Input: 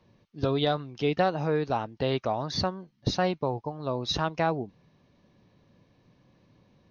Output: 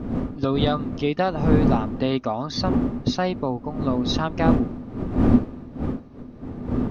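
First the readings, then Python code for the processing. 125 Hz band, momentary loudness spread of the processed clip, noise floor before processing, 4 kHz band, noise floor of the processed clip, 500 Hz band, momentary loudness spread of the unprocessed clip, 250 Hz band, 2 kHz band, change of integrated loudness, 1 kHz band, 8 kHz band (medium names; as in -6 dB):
+8.5 dB, 12 LU, -66 dBFS, +2.0 dB, -41 dBFS, +3.5 dB, 7 LU, +12.5 dB, +2.5 dB, +6.0 dB, +3.0 dB, no reading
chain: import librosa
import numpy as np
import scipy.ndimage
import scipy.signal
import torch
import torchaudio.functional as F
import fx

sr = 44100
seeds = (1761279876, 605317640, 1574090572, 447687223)

y = fx.dmg_wind(x, sr, seeds[0], corner_hz=270.0, level_db=-29.0)
y = fx.small_body(y, sr, hz=(250.0, 1200.0), ring_ms=90, db=11)
y = y * 10.0 ** (2.0 / 20.0)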